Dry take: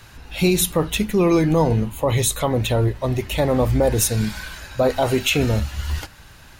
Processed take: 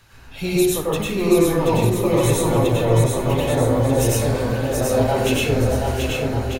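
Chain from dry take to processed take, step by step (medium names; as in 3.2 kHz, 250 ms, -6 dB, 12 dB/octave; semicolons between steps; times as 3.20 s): on a send: bouncing-ball echo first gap 730 ms, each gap 0.7×, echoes 5; on the sum: plate-style reverb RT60 0.86 s, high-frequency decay 0.4×, pre-delay 85 ms, DRR -6.5 dB; trim -8.5 dB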